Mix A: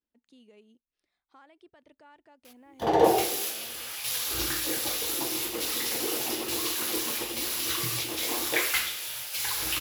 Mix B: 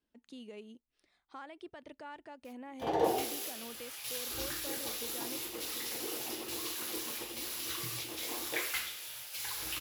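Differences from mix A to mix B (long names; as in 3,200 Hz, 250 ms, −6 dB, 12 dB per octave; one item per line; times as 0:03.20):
speech +8.0 dB
background −9.0 dB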